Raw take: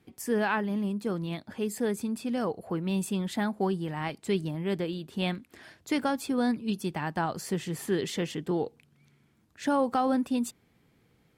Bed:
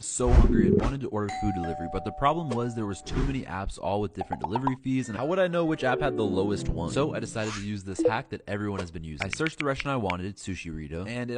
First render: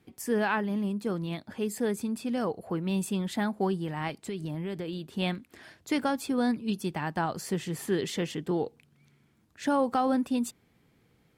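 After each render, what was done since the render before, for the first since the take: 4.23–5.02 compressor 10:1, threshold -30 dBFS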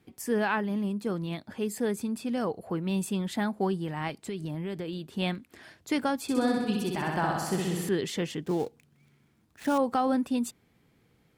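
6.22–7.89 flutter echo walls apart 10.9 m, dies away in 1.2 s; 8.42–9.78 switching dead time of 0.088 ms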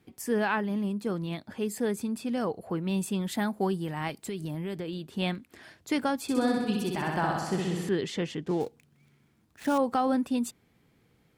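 3.21–4.76 high shelf 10000 Hz +11 dB; 7.39–8.61 air absorption 51 m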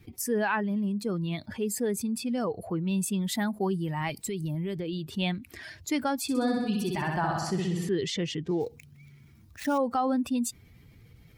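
per-bin expansion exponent 1.5; fast leveller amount 50%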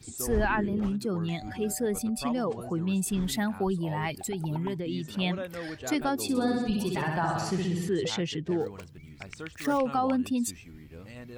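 add bed -12.5 dB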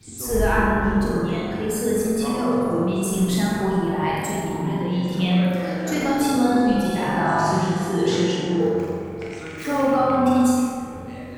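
flutter echo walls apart 7.6 m, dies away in 0.78 s; plate-style reverb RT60 2.6 s, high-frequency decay 0.3×, DRR -4 dB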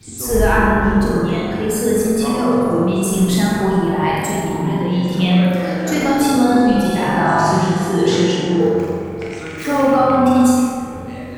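gain +5.5 dB; limiter -3 dBFS, peak gain reduction 1.5 dB

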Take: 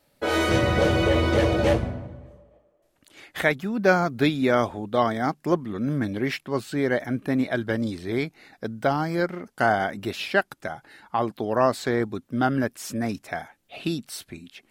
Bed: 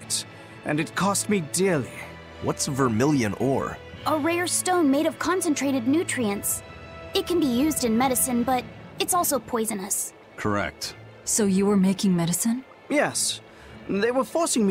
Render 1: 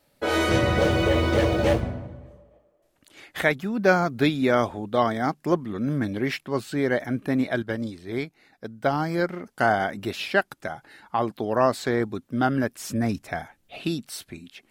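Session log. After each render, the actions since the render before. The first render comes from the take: 0.76–1.81 G.711 law mismatch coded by A; 7.62–8.93 upward expander, over -33 dBFS; 12.78–13.77 low shelf 140 Hz +9.5 dB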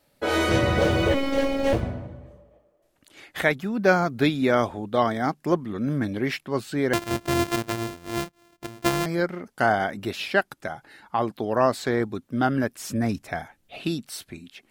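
1.14–1.73 robotiser 274 Hz; 6.93–9.06 sample sorter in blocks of 128 samples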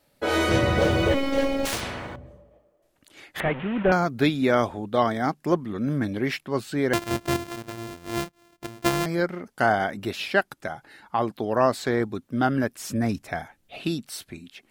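1.65–2.16 spectral compressor 4:1; 3.4–3.92 delta modulation 16 kbps, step -28.5 dBFS; 7.36–7.95 compressor, threshold -31 dBFS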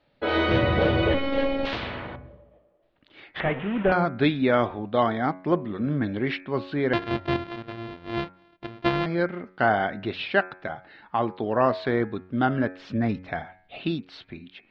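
steep low-pass 4000 Hz 36 dB/oct; de-hum 92.19 Hz, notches 28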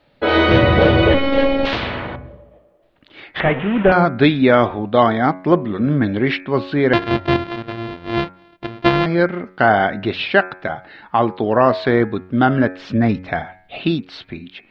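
gain +9 dB; limiter -1 dBFS, peak gain reduction 2.5 dB

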